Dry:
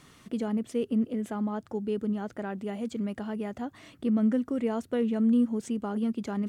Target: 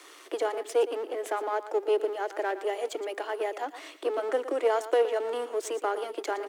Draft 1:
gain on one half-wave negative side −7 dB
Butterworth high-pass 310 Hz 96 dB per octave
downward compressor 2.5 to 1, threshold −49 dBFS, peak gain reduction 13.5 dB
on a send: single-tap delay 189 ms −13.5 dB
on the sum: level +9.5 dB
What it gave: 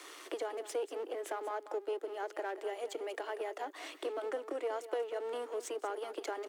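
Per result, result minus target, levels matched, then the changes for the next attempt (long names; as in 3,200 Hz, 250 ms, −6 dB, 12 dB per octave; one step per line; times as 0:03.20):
downward compressor: peak gain reduction +13.5 dB; echo 73 ms late
remove: downward compressor 2.5 to 1, threshold −49 dBFS, peak gain reduction 13.5 dB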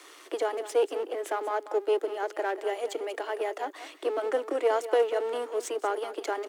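echo 73 ms late
change: single-tap delay 116 ms −13.5 dB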